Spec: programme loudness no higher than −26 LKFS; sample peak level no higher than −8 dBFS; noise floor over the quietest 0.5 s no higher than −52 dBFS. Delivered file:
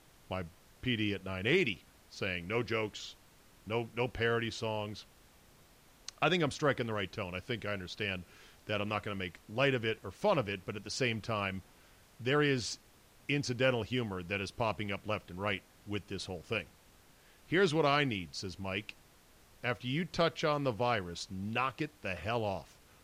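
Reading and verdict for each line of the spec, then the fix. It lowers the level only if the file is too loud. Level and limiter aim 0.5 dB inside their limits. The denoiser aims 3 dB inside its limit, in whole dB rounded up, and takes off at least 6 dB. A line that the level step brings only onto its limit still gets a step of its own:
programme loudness −34.5 LKFS: in spec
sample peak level −17.0 dBFS: in spec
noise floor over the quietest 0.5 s −62 dBFS: in spec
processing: no processing needed

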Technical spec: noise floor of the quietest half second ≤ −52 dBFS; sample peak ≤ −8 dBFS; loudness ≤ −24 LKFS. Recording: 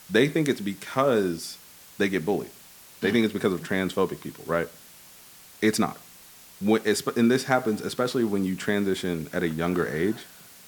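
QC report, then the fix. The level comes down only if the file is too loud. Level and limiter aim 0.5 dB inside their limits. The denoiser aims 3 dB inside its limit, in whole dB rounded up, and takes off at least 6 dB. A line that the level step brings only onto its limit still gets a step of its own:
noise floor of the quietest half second −50 dBFS: out of spec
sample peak −6.0 dBFS: out of spec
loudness −26.0 LKFS: in spec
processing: broadband denoise 6 dB, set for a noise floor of −50 dBFS
brickwall limiter −8.5 dBFS

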